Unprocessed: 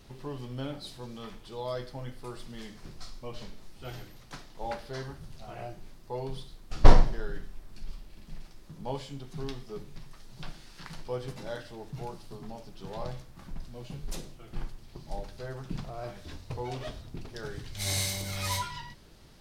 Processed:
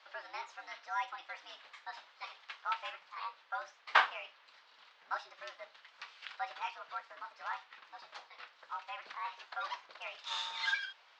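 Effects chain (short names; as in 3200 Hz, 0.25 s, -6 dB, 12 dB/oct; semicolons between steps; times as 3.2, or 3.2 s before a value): mistuned SSB -58 Hz 580–2600 Hz; speed mistake 45 rpm record played at 78 rpm; gain +2.5 dB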